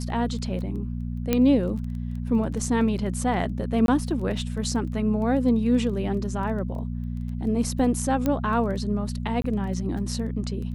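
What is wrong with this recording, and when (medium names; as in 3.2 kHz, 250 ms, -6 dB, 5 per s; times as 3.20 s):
crackle 12 per s -34 dBFS
hum 60 Hz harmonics 4 -30 dBFS
1.33 s: pop -8 dBFS
3.86–3.88 s: dropout 22 ms
8.26 s: pop -12 dBFS
9.42–9.44 s: dropout 23 ms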